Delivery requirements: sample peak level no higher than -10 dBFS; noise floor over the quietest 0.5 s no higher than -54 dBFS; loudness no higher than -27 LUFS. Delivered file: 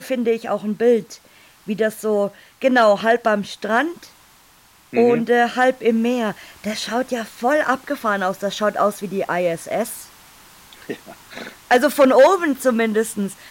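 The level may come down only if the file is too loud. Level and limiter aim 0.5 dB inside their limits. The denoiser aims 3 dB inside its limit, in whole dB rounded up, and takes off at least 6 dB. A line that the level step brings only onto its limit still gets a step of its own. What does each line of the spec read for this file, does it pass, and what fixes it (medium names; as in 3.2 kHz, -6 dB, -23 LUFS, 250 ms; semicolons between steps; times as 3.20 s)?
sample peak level -5.0 dBFS: fail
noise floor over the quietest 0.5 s -52 dBFS: fail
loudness -19.0 LUFS: fail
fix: trim -8.5 dB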